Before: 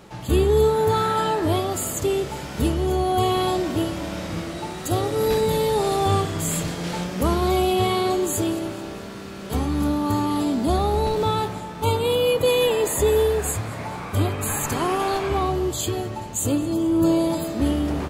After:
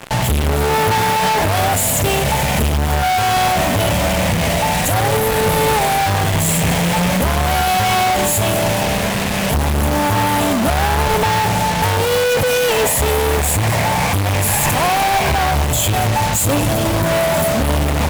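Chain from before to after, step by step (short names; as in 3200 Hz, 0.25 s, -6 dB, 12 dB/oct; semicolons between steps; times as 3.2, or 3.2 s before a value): fixed phaser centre 1300 Hz, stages 6; fuzz box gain 39 dB, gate -47 dBFS; added harmonics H 8 -11 dB, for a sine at -9 dBFS; gain -2 dB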